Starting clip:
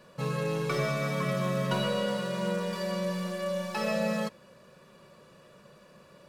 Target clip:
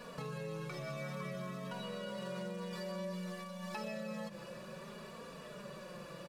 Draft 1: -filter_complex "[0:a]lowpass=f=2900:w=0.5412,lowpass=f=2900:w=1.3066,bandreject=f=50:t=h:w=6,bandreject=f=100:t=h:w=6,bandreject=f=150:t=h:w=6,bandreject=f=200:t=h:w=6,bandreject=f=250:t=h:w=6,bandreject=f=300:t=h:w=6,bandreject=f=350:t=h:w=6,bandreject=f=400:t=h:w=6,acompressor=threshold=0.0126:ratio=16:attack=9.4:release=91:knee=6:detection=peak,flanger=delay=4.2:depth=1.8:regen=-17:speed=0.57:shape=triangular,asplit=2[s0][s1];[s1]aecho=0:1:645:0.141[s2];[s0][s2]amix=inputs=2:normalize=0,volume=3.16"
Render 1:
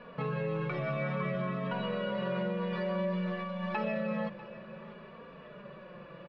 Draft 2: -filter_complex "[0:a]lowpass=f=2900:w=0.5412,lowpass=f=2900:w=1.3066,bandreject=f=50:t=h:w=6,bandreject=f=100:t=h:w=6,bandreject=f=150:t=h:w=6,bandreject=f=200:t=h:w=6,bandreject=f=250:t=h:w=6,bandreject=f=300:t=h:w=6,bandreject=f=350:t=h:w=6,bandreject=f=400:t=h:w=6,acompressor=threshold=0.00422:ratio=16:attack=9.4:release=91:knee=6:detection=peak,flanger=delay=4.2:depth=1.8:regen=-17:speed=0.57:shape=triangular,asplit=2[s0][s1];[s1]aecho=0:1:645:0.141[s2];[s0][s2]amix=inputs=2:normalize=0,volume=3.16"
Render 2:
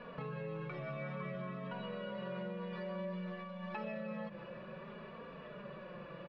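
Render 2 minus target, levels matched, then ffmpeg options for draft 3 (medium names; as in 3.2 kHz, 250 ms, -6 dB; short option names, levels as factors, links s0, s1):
4 kHz band -5.5 dB
-filter_complex "[0:a]bandreject=f=50:t=h:w=6,bandreject=f=100:t=h:w=6,bandreject=f=150:t=h:w=6,bandreject=f=200:t=h:w=6,bandreject=f=250:t=h:w=6,bandreject=f=300:t=h:w=6,bandreject=f=350:t=h:w=6,bandreject=f=400:t=h:w=6,acompressor=threshold=0.00422:ratio=16:attack=9.4:release=91:knee=6:detection=peak,flanger=delay=4.2:depth=1.8:regen=-17:speed=0.57:shape=triangular,asplit=2[s0][s1];[s1]aecho=0:1:645:0.141[s2];[s0][s2]amix=inputs=2:normalize=0,volume=3.16"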